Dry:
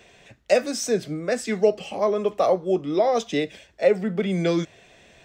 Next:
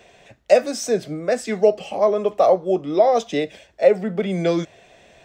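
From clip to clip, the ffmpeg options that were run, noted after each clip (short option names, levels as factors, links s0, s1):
-af "equalizer=f=660:w=1.4:g=6"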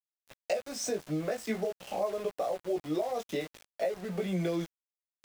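-af "acompressor=threshold=0.0501:ratio=12,flanger=delay=16:depth=3.6:speed=0.49,aeval=exprs='val(0)*gte(abs(val(0)),0.00794)':c=same"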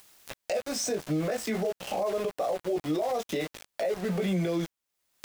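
-af "alimiter=level_in=1.78:limit=0.0631:level=0:latency=1:release=34,volume=0.562,acompressor=mode=upward:threshold=0.01:ratio=2.5,volume=2.37"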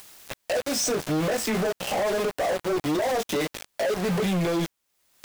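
-af "asoftclip=type=hard:threshold=0.0266,volume=2.82"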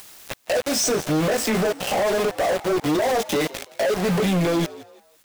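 -filter_complex "[0:a]asplit=4[s0][s1][s2][s3];[s1]adelay=168,afreqshift=100,volume=0.119[s4];[s2]adelay=336,afreqshift=200,volume=0.0394[s5];[s3]adelay=504,afreqshift=300,volume=0.0129[s6];[s0][s4][s5][s6]amix=inputs=4:normalize=0,volume=1.58"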